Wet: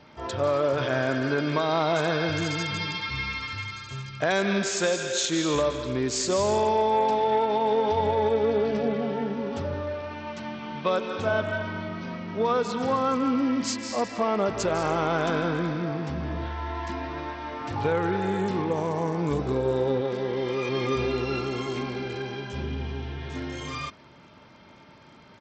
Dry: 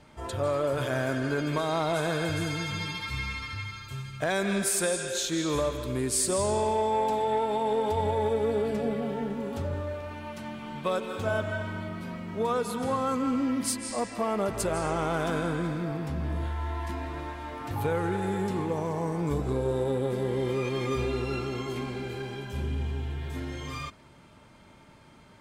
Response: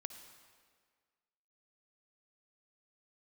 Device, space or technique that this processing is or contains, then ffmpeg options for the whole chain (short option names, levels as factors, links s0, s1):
Bluetooth headset: -filter_complex "[0:a]asettb=1/sr,asplit=3[s0][s1][s2];[s0]atrim=end=20.014[s3];[s1]atrim=start=20.01:end=20.69,asetpts=PTS-STARTPTS,afade=t=in:d=0.004:c=qsin,afade=t=out:st=0.676:d=0.004:c=qsin,lowshelf=f=300:g=-6.5[s4];[s2]atrim=start=20.686[s5];[s3][s4]acrossfade=d=0.004:c1=hsin:c2=qsin[s6];[s6][s5]acrossfade=d=0.004:c1=qsin:c2=hsin,highpass=f=140:p=1,aresample=16000,aresample=44100,volume=1.58" -ar 32000 -c:a sbc -b:a 64k